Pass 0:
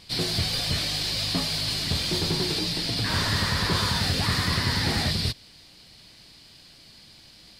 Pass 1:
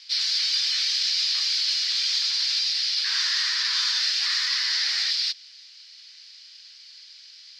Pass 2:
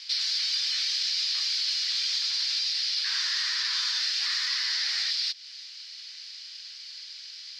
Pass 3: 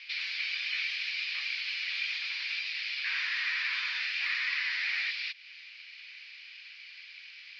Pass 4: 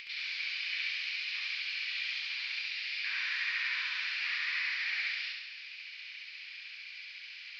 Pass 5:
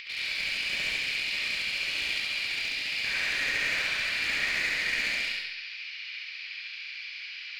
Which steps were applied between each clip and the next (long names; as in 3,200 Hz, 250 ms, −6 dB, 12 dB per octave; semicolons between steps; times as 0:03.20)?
high-pass filter 1,500 Hz 24 dB per octave; high shelf with overshoot 7,700 Hz −12 dB, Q 3
downward compressor 2.5 to 1, threshold −34 dBFS, peak gain reduction 9 dB; level +4.5 dB
low-pass with resonance 2,400 Hz, resonance Q 5.7; level −5 dB
upward compression, threshold −37 dBFS; flutter between parallel walls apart 11.8 metres, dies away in 1.3 s; level −5 dB
asymmetric clip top −35 dBFS; convolution reverb RT60 0.60 s, pre-delay 30 ms, DRR −0.5 dB; level +3.5 dB